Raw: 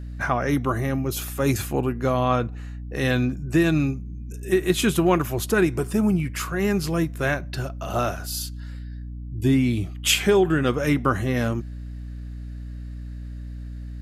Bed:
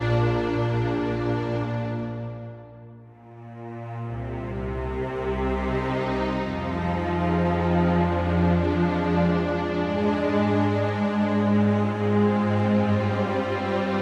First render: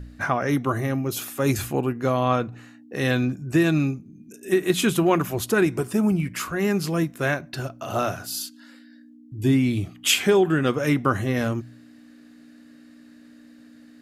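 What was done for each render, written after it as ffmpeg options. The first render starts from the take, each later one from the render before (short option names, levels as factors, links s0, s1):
-af "bandreject=f=60:t=h:w=4,bandreject=f=120:t=h:w=4,bandreject=f=180:t=h:w=4"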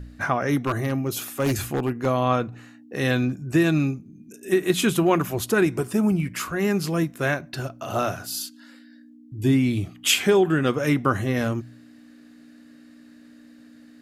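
-filter_complex "[0:a]asettb=1/sr,asplit=3[s0][s1][s2];[s0]atrim=end=0.564[s3];[s1]atrim=start=0.56:end=2.06,asetpts=PTS-STARTPTS,afade=t=in:d=0.004:c=qsin,afade=t=out:st=1.496:d=0.004:c=qsin,aeval=exprs='0.15*(abs(mod(val(0)/0.15+3,4)-2)-1)':c=same[s4];[s2]atrim=start=2.056[s5];[s3][s4]acrossfade=d=0.004:c1=hsin:c2=qsin[s6];[s6][s5]acrossfade=d=0.004:c1=qsin:c2=hsin"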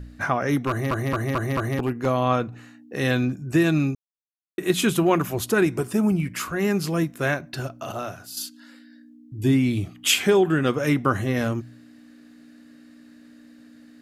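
-filter_complex "[0:a]asplit=10[s0][s1][s2][s3][s4][s5][s6][s7][s8][s9];[s0]atrim=end=0.912[s10];[s1]atrim=start=0.688:end=0.912[s11];[s2]atrim=start=0.688:end=0.912[s12];[s3]atrim=start=0.688:end=0.912[s13];[s4]atrim=start=0.688:end=0.912[s14];[s5]atrim=start=1.788:end=3.95,asetpts=PTS-STARTPTS,afade=t=out:st=2.158:d=0.004:c=hsin[s15];[s6]atrim=start=3.95:end=4.58,asetpts=PTS-STARTPTS,volume=0[s16];[s7]atrim=start=4.58:end=7.922,asetpts=PTS-STARTPTS,afade=t=in:d=0.004:c=hsin[s17];[s8]atrim=start=7.918:end=8.372,asetpts=PTS-STARTPTS,volume=0.447[s18];[s9]atrim=start=8.368[s19];[s10][s11]acrossfade=d=0.004:c1=hsin:c2=hsin[s20];[s20][s12]acrossfade=d=0.004:c1=hsin:c2=hsin[s21];[s21][s13]acrossfade=d=0.004:c1=hsin:c2=hsin[s22];[s22][s14]acrossfade=d=0.004:c1=hsin:c2=hsin[s23];[s15][s16][s17]concat=n=3:v=0:a=1[s24];[s23][s24]acrossfade=d=0.004:c1=hsin:c2=hsin[s25];[s25][s18]acrossfade=d=0.004:c1=hsin:c2=hsin[s26];[s26][s19]acrossfade=d=0.004:c1=hsin:c2=hsin"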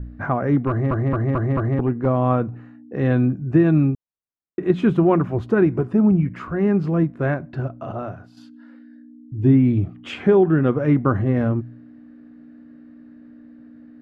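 -af "lowpass=1400,lowshelf=f=360:g=7"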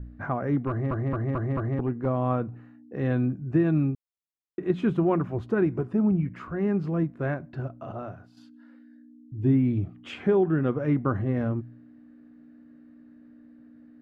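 -af "volume=0.447"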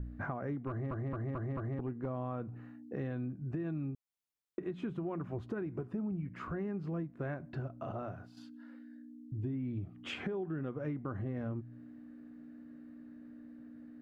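-af "alimiter=limit=0.119:level=0:latency=1:release=187,acompressor=threshold=0.0141:ratio=4"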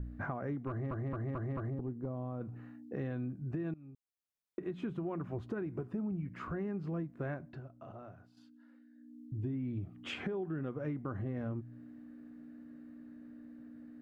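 -filter_complex "[0:a]asettb=1/sr,asplit=3[s0][s1][s2];[s0]atrim=end=1.704[s3];[s1]atrim=start=1.7:end=2.41,asetpts=PTS-STARTPTS,afade=t=in:d=0.004:c=qsin,afade=t=out:st=0.706:d=0.004:c=qsin,equalizer=f=2200:w=0.55:g=-13.5[s4];[s2]atrim=start=2.406[s5];[s3][s4]acrossfade=d=0.004:c1=hsin:c2=qsin[s6];[s6][s5]acrossfade=d=0.004:c1=qsin:c2=hsin,asplit=4[s7][s8][s9][s10];[s7]atrim=end=3.74,asetpts=PTS-STARTPTS,afade=t=out:st=3.736:d=0.004:c=hsin:silence=0.0891251[s11];[s8]atrim=start=3.74:end=7.61,asetpts=PTS-STARTPTS,afade=t=in:d=0.98:silence=0.0891251,afade=t=out:st=3.61:d=0.26:silence=0.354813[s12];[s9]atrim=start=7.61:end=8.94,asetpts=PTS-STARTPTS,volume=0.355[s13];[s10]atrim=start=8.94,asetpts=PTS-STARTPTS,afade=t=in:d=0.26:silence=0.354813[s14];[s11][s12][s13][s14]concat=n=4:v=0:a=1"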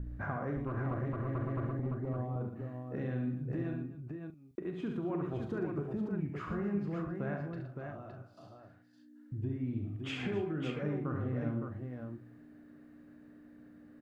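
-filter_complex "[0:a]asplit=2[s0][s1];[s1]adelay=40,volume=0.316[s2];[s0][s2]amix=inputs=2:normalize=0,aecho=1:1:69|118|262|564:0.473|0.355|0.141|0.531"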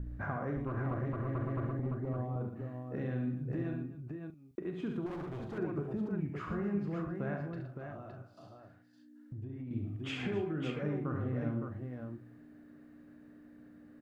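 -filter_complex "[0:a]asettb=1/sr,asplit=3[s0][s1][s2];[s0]atrim=end=5.064[s3];[s1]atrim=start=5.06:end=5.58,asetpts=PTS-STARTPTS,afade=t=in:d=0.004:c=qsin,afade=t=out:st=0.516:d=0.004:c=qsin,asoftclip=type=hard:threshold=0.0119[s4];[s2]atrim=start=5.576[s5];[s3][s4]acrossfade=d=0.004:c1=hsin:c2=qsin[s6];[s6][s5]acrossfade=d=0.004:c1=qsin:c2=hsin,asettb=1/sr,asplit=3[s7][s8][s9];[s7]atrim=end=7.774[s10];[s8]atrim=start=7.77:end=9.71,asetpts=PTS-STARTPTS,afade=t=in:d=0.004:c=qsin,afade=t=out:st=1.936:d=0.004:c=qsin,acompressor=threshold=0.0112:ratio=6:attack=3.2:release=140:knee=1:detection=peak[s11];[s9]atrim=start=9.706[s12];[s10][s11]acrossfade=d=0.004:c1=hsin:c2=qsin[s13];[s13][s12]acrossfade=d=0.004:c1=qsin:c2=hsin"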